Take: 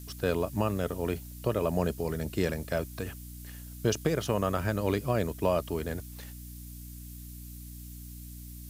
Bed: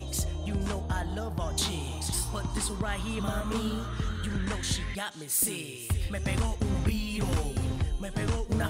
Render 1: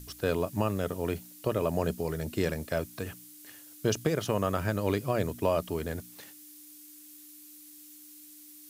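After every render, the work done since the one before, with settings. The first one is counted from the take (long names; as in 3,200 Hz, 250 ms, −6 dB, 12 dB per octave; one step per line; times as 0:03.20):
hum removal 60 Hz, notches 4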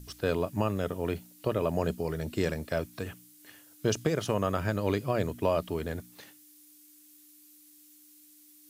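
noise reduction from a noise print 6 dB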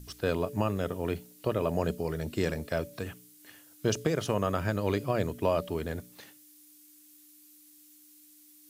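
hum removal 144 Hz, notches 4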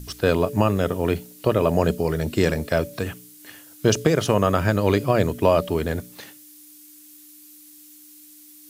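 level +9.5 dB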